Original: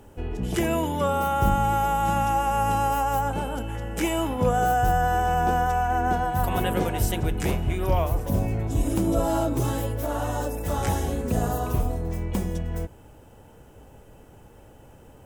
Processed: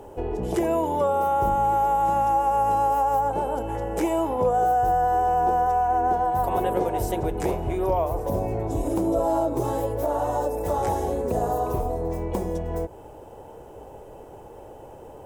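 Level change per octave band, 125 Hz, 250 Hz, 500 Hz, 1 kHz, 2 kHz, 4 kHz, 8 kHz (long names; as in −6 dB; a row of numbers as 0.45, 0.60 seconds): −6.0 dB, −1.0 dB, +4.0 dB, +3.0 dB, −7.5 dB, can't be measured, −6.0 dB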